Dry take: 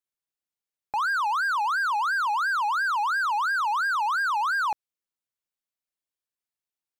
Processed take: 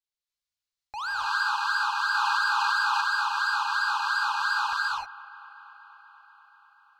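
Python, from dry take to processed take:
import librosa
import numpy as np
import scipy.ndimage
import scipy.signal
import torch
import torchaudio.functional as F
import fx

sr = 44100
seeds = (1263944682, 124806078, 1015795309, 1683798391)

p1 = fx.curve_eq(x, sr, hz=(100.0, 180.0, 2900.0, 4300.0, 12000.0), db=(0, -19, -3, 2, -11))
p2 = p1 + fx.echo_wet_bandpass(p1, sr, ms=241, feedback_pct=77, hz=1200.0, wet_db=-18, dry=0)
p3 = fx.rev_gated(p2, sr, seeds[0], gate_ms=340, shape='rising', drr_db=-4.5)
y = fx.env_flatten(p3, sr, amount_pct=100, at=(2.14, 3.01))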